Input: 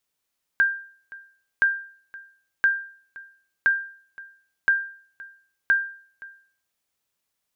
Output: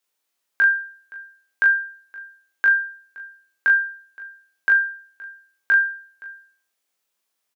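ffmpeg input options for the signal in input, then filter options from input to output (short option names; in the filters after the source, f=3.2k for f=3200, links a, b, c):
-f lavfi -i "aevalsrc='0.251*(sin(2*PI*1590*mod(t,1.02))*exp(-6.91*mod(t,1.02)/0.49)+0.0841*sin(2*PI*1590*max(mod(t,1.02)-0.52,0))*exp(-6.91*max(mod(t,1.02)-0.52,0)/0.49))':d=6.12:s=44100"
-filter_complex "[0:a]highpass=270,asplit=2[a][b];[b]aecho=0:1:20|39|71:0.668|0.596|0.188[c];[a][c]amix=inputs=2:normalize=0"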